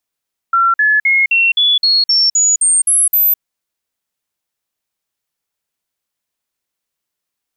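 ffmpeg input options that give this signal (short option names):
-f lavfi -i "aevalsrc='0.376*clip(min(mod(t,0.26),0.21-mod(t,0.26))/0.005,0,1)*sin(2*PI*1360*pow(2,floor(t/0.26)/3)*mod(t,0.26))':d=2.86:s=44100"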